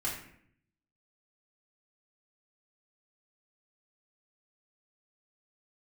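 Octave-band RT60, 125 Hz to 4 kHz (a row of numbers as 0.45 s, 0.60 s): 1.0 s, 0.85 s, 0.70 s, 0.60 s, 0.65 s, 0.45 s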